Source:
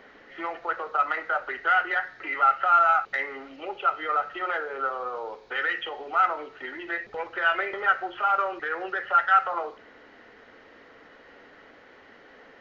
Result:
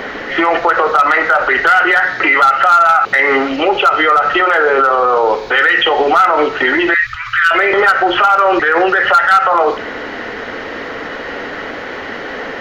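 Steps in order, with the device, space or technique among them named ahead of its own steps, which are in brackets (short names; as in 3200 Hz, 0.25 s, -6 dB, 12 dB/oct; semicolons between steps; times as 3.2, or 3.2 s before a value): loud club master (compressor 2.5:1, threshold -25 dBFS, peak gain reduction 7.5 dB; hard clip -20 dBFS, distortion -23 dB; maximiser +29.5 dB); 1.71–3.51 HPF 65 Hz; 6.94–7.51 Chebyshev band-stop 120–1200 Hz, order 5; gain -2.5 dB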